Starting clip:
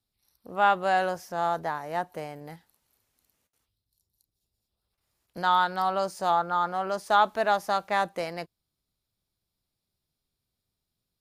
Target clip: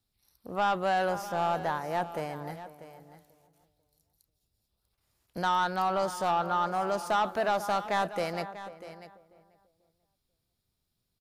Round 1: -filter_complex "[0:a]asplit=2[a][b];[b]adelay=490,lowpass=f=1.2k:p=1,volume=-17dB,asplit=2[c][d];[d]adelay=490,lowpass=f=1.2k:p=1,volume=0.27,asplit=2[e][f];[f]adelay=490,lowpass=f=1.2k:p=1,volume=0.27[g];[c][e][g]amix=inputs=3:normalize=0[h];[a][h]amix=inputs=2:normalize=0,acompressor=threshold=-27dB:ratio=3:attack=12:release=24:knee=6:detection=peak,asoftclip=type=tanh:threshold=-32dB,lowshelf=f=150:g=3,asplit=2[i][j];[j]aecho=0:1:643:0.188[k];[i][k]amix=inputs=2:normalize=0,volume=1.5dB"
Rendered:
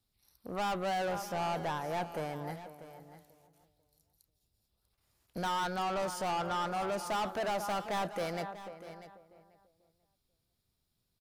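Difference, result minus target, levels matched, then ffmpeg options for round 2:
soft clip: distortion +10 dB
-filter_complex "[0:a]asplit=2[a][b];[b]adelay=490,lowpass=f=1.2k:p=1,volume=-17dB,asplit=2[c][d];[d]adelay=490,lowpass=f=1.2k:p=1,volume=0.27,asplit=2[e][f];[f]adelay=490,lowpass=f=1.2k:p=1,volume=0.27[g];[c][e][g]amix=inputs=3:normalize=0[h];[a][h]amix=inputs=2:normalize=0,acompressor=threshold=-27dB:ratio=3:attack=12:release=24:knee=6:detection=peak,asoftclip=type=tanh:threshold=-21dB,lowshelf=f=150:g=3,asplit=2[i][j];[j]aecho=0:1:643:0.188[k];[i][k]amix=inputs=2:normalize=0,volume=1.5dB"

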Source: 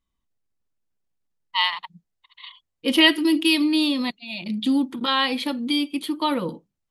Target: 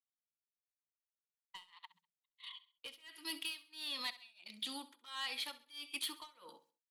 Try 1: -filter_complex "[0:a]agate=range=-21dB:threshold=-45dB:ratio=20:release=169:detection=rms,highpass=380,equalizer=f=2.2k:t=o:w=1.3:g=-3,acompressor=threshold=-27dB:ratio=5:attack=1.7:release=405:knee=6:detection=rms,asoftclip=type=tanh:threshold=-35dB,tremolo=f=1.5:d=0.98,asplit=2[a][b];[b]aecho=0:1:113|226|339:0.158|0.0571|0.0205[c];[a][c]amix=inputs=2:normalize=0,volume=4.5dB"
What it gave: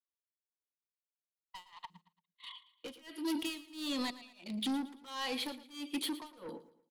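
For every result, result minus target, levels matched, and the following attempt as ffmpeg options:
echo 47 ms late; 500 Hz band +10.0 dB; compressor: peak gain reduction -3.5 dB
-filter_complex "[0:a]agate=range=-21dB:threshold=-45dB:ratio=20:release=169:detection=rms,highpass=380,equalizer=f=2.2k:t=o:w=1.3:g=-3,acompressor=threshold=-27dB:ratio=5:attack=1.7:release=405:knee=6:detection=rms,asoftclip=type=tanh:threshold=-35dB,tremolo=f=1.5:d=0.98,asplit=2[a][b];[b]aecho=0:1:66|132|198:0.158|0.0571|0.0205[c];[a][c]amix=inputs=2:normalize=0,volume=4.5dB"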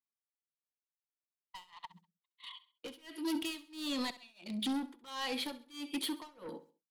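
500 Hz band +10.0 dB; compressor: peak gain reduction -3.5 dB
-filter_complex "[0:a]agate=range=-21dB:threshold=-45dB:ratio=20:release=169:detection=rms,highpass=1.3k,equalizer=f=2.2k:t=o:w=1.3:g=-3,acompressor=threshold=-27dB:ratio=5:attack=1.7:release=405:knee=6:detection=rms,asoftclip=type=tanh:threshold=-35dB,tremolo=f=1.5:d=0.98,asplit=2[a][b];[b]aecho=0:1:66|132|198:0.158|0.0571|0.0205[c];[a][c]amix=inputs=2:normalize=0,volume=4.5dB"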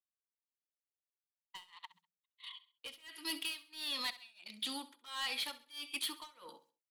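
compressor: peak gain reduction -5 dB
-filter_complex "[0:a]agate=range=-21dB:threshold=-45dB:ratio=20:release=169:detection=rms,highpass=1.3k,equalizer=f=2.2k:t=o:w=1.3:g=-3,acompressor=threshold=-33dB:ratio=5:attack=1.7:release=405:knee=6:detection=rms,asoftclip=type=tanh:threshold=-35dB,tremolo=f=1.5:d=0.98,asplit=2[a][b];[b]aecho=0:1:66|132|198:0.158|0.0571|0.0205[c];[a][c]amix=inputs=2:normalize=0,volume=4.5dB"

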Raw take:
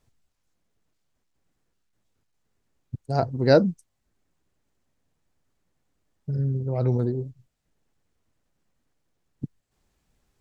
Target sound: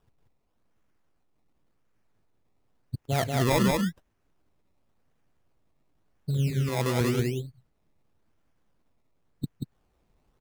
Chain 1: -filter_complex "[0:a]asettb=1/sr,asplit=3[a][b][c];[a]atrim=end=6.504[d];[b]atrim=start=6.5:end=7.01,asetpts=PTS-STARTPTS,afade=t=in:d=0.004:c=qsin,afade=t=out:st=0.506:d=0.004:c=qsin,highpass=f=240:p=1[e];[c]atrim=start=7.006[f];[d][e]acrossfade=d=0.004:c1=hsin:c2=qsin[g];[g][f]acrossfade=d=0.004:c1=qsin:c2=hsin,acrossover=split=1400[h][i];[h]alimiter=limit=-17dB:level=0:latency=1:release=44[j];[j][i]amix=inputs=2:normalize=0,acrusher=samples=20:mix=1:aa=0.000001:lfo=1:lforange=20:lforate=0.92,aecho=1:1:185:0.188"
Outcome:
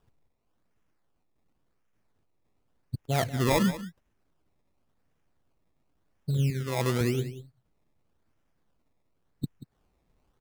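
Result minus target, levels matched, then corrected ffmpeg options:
echo-to-direct -12 dB
-filter_complex "[0:a]asettb=1/sr,asplit=3[a][b][c];[a]atrim=end=6.504[d];[b]atrim=start=6.5:end=7.01,asetpts=PTS-STARTPTS,afade=t=in:d=0.004:c=qsin,afade=t=out:st=0.506:d=0.004:c=qsin,highpass=f=240:p=1[e];[c]atrim=start=7.006[f];[d][e]acrossfade=d=0.004:c1=hsin:c2=qsin[g];[g][f]acrossfade=d=0.004:c1=qsin:c2=hsin,acrossover=split=1400[h][i];[h]alimiter=limit=-17dB:level=0:latency=1:release=44[j];[j][i]amix=inputs=2:normalize=0,acrusher=samples=20:mix=1:aa=0.000001:lfo=1:lforange=20:lforate=0.92,aecho=1:1:185:0.75"

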